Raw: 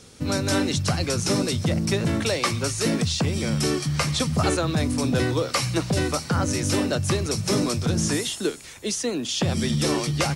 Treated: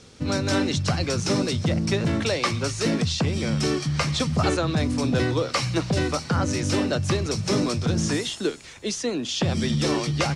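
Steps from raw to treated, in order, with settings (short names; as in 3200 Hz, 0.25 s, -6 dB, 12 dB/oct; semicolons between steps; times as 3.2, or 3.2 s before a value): LPF 6400 Hz 12 dB/oct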